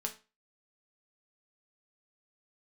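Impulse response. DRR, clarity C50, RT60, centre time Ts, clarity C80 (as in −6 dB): 2.0 dB, 13.0 dB, 0.30 s, 10 ms, 19.0 dB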